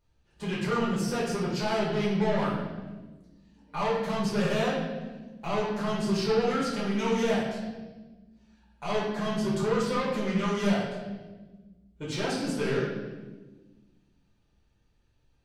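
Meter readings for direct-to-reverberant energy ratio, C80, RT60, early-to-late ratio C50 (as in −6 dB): −7.5 dB, 3.5 dB, 1.3 s, 1.5 dB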